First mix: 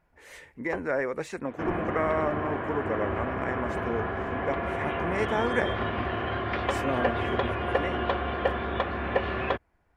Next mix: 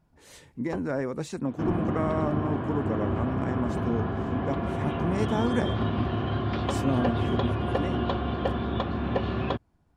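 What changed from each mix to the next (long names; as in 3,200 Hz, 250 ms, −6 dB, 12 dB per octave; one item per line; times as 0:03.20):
master: add graphic EQ with 10 bands 125 Hz +9 dB, 250 Hz +6 dB, 500 Hz −4 dB, 2,000 Hz −11 dB, 4,000 Hz +5 dB, 8,000 Hz +3 dB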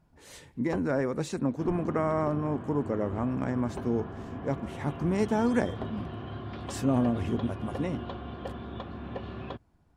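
second sound −10.5 dB
reverb: on, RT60 1.9 s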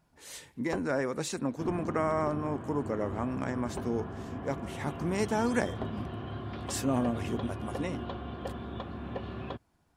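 speech: add spectral tilt +2 dB per octave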